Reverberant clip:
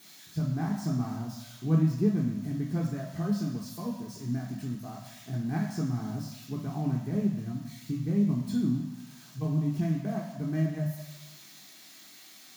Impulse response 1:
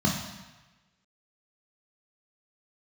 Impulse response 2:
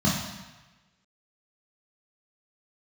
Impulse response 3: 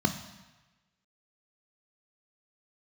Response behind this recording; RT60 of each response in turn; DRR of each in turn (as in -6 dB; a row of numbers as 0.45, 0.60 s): 1; 1.1, 1.1, 1.2 s; -1.5, -5.5, 7.0 dB